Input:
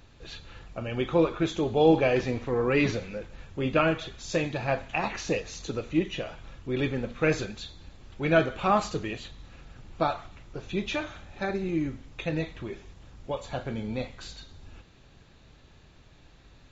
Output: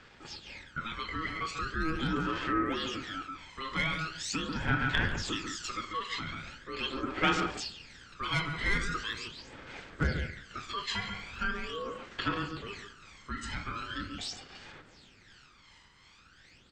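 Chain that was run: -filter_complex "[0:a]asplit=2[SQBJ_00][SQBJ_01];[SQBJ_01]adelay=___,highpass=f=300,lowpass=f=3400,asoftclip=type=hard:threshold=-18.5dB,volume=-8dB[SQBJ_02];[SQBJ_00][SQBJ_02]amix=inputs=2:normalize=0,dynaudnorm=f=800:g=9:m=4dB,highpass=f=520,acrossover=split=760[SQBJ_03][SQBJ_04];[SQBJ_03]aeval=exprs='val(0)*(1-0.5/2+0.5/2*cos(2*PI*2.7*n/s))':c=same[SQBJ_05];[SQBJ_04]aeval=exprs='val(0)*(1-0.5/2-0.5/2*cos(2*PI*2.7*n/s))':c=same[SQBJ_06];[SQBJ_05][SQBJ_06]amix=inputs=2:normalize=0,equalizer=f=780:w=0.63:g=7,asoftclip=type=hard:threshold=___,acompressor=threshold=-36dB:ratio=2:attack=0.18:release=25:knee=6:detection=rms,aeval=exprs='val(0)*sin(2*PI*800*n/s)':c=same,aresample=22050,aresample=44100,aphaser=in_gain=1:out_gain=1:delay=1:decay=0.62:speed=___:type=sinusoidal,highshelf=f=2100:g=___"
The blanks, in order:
140, -13.5dB, 0.41, 6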